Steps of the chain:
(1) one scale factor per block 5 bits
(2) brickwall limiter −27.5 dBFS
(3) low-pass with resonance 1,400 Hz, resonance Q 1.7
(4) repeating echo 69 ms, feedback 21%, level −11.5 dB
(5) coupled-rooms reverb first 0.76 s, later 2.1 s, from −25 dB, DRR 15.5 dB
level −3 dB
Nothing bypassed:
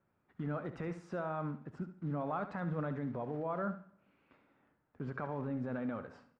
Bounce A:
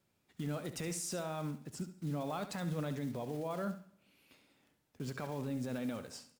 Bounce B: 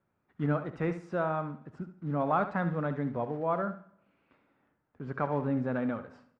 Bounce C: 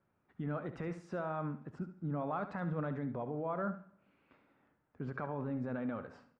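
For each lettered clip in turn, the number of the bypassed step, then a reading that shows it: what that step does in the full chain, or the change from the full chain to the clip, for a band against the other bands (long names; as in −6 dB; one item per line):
3, 1 kHz band −2.5 dB
2, average gain reduction 4.5 dB
1, distortion level −23 dB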